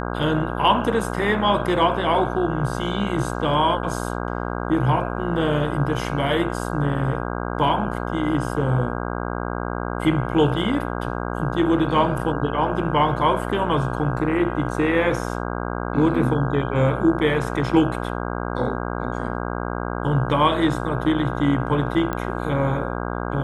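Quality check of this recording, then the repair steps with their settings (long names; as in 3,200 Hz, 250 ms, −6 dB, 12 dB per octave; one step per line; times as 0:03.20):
mains buzz 60 Hz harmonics 27 −27 dBFS
0:22.13: click −13 dBFS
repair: click removal
hum removal 60 Hz, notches 27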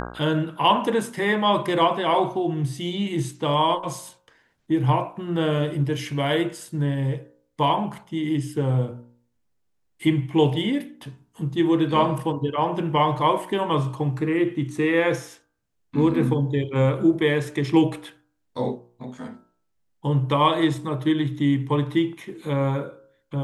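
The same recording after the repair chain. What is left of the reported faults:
none of them is left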